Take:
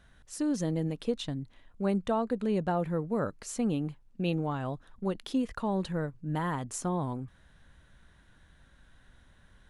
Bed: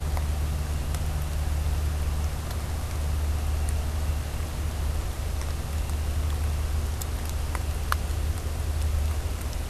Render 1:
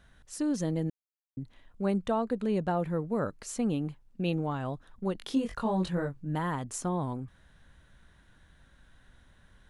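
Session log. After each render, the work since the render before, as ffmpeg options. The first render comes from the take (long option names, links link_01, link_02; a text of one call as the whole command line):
ffmpeg -i in.wav -filter_complex "[0:a]asettb=1/sr,asplit=3[link_01][link_02][link_03];[link_01]atrim=end=5.184[link_04];[link_02]atrim=start=5.18:end=6.26,asetpts=PTS-STARTPTS,afade=type=in:duration=0.004:curve=qsin,afade=type=out:start_time=1.076:duration=0.004:curve=qsin,asplit=2[link_05][link_06];[link_06]adelay=22,volume=-2.5dB[link_07];[link_05][link_07]amix=inputs=2:normalize=0,atrim=end_sample=47628[link_08];[link_03]atrim=start=6.256[link_09];[link_04][link_08]acrossfade=duration=0.004:curve1=hsin:curve2=qsin[link_10];[link_10][link_09]acrossfade=duration=0.004:curve1=qsin:curve2=hsin,asplit=3[link_11][link_12][link_13];[link_11]atrim=end=0.9,asetpts=PTS-STARTPTS,afade=type=out:start_time=0.896:duration=0.004:curve=hsin[link_14];[link_12]atrim=start=0.9:end=1.37,asetpts=PTS-STARTPTS,volume=0[link_15];[link_13]atrim=start=1.37,asetpts=PTS-STARTPTS,afade=type=in:duration=0.004:curve=hsin[link_16];[link_14][link_15][link_16]concat=n=3:v=0:a=1" out.wav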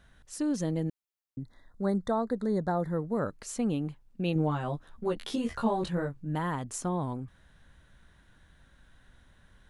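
ffmpeg -i in.wav -filter_complex "[0:a]asettb=1/sr,asplit=3[link_01][link_02][link_03];[link_01]atrim=end=1.414[link_04];[link_02]atrim=start=1.41:end=3.17,asetpts=PTS-STARTPTS,afade=type=in:duration=0.004:curve=qsin,afade=type=out:start_time=1.756:duration=0.004:curve=qsin,asuperstop=centerf=2700:order=12:qfactor=2[link_05];[link_03]atrim=start=3.166[link_06];[link_04][link_05]acrossfade=duration=0.004:curve1=hsin:curve2=qsin[link_07];[link_07][link_06]acrossfade=duration=0.004:curve1=qsin:curve2=hsin,asettb=1/sr,asplit=3[link_08][link_09][link_10];[link_08]atrim=end=4.344[link_11];[link_09]atrim=start=4.34:end=5.84,asetpts=PTS-STARTPTS,afade=type=in:duration=0.004:curve=qsin,afade=type=out:start_time=1.496:duration=0.004:curve=qsin,asplit=2[link_12][link_13];[link_13]adelay=13,volume=-2dB[link_14];[link_12][link_14]amix=inputs=2:normalize=0,atrim=end_sample=66150[link_15];[link_10]atrim=start=5.836[link_16];[link_11][link_15]acrossfade=duration=0.004:curve1=hsin:curve2=qsin[link_17];[link_17][link_16]acrossfade=duration=0.004:curve1=qsin:curve2=hsin" out.wav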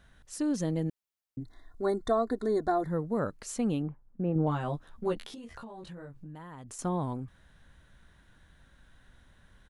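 ffmpeg -i in.wav -filter_complex "[0:a]asplit=3[link_01][link_02][link_03];[link_01]afade=type=out:start_time=1.4:duration=0.02[link_04];[link_02]aecho=1:1:2.8:0.87,afade=type=in:start_time=1.4:duration=0.02,afade=type=out:start_time=2.83:duration=0.02[link_05];[link_03]afade=type=in:start_time=2.83:duration=0.02[link_06];[link_04][link_05][link_06]amix=inputs=3:normalize=0,asettb=1/sr,asplit=3[link_07][link_08][link_09];[link_07]atrim=end=3.824[link_10];[link_08]atrim=start=3.82:end=4.47,asetpts=PTS-STARTPTS,afade=type=in:duration=0.004:curve=qsin,afade=type=out:start_time=0.646:duration=0.004:curve=qsin,lowpass=frequency=1500:width=0.5412,lowpass=frequency=1500:width=1.3066[link_11];[link_09]atrim=start=4.466[link_12];[link_10][link_11]acrossfade=duration=0.004:curve1=hsin:curve2=qsin[link_13];[link_13][link_12]acrossfade=duration=0.004:curve1=qsin:curve2=hsin,asettb=1/sr,asplit=3[link_14][link_15][link_16];[link_14]atrim=end=5.204[link_17];[link_15]atrim=start=5.2:end=6.79,asetpts=PTS-STARTPTS,afade=type=in:duration=0.004:curve=qsin,afade=type=out:start_time=1.586:duration=0.004:curve=qsin,acompressor=threshold=-41dB:ratio=16:attack=3.2:release=140:knee=1:detection=peak[link_18];[link_16]atrim=start=6.786[link_19];[link_17][link_18]acrossfade=duration=0.004:curve1=hsin:curve2=qsin[link_20];[link_20][link_19]acrossfade=duration=0.004:curve1=qsin:curve2=hsin" out.wav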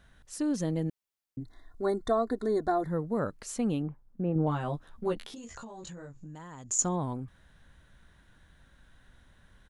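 ffmpeg -i in.wav -filter_complex "[0:a]asettb=1/sr,asplit=3[link_01][link_02][link_03];[link_01]atrim=end=5.364[link_04];[link_02]atrim=start=5.36:end=6.96,asetpts=PTS-STARTPTS,afade=type=in:duration=0.004:curve=qsin,afade=type=out:start_time=1.596:duration=0.004:curve=qsin,lowpass=frequency=6900:width_type=q:width=15[link_05];[link_03]atrim=start=6.956[link_06];[link_04][link_05]acrossfade=duration=0.004:curve1=hsin:curve2=qsin[link_07];[link_07][link_06]acrossfade=duration=0.004:curve1=qsin:curve2=hsin" out.wav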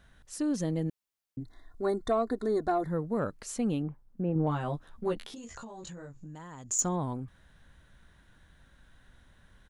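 ffmpeg -i in.wav -af "asoftclip=type=tanh:threshold=-15.5dB" out.wav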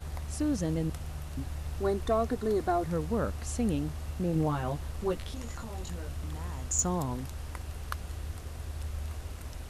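ffmpeg -i in.wav -i bed.wav -filter_complex "[1:a]volume=-10.5dB[link_01];[0:a][link_01]amix=inputs=2:normalize=0" out.wav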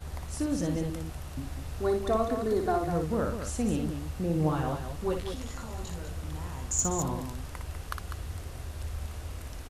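ffmpeg -i in.wav -af "aecho=1:1:58.31|198.3:0.501|0.398" out.wav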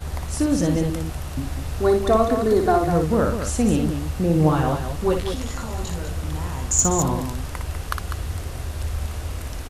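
ffmpeg -i in.wav -af "volume=9.5dB" out.wav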